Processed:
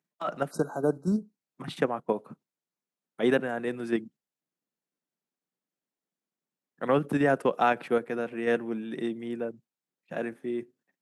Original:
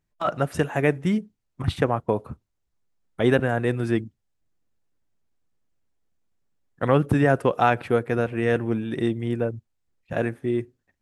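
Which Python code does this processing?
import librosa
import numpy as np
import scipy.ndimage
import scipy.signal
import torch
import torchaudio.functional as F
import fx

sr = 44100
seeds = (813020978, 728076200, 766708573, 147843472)

p1 = scipy.signal.sosfilt(scipy.signal.butter(6, 160.0, 'highpass', fs=sr, output='sos'), x)
p2 = fx.level_steps(p1, sr, step_db=21)
p3 = p1 + (p2 * librosa.db_to_amplitude(-1.0))
p4 = fx.spec_repair(p3, sr, seeds[0], start_s=0.53, length_s=0.81, low_hz=1600.0, high_hz=3800.0, source='after')
y = p4 * librosa.db_to_amplitude(-8.0)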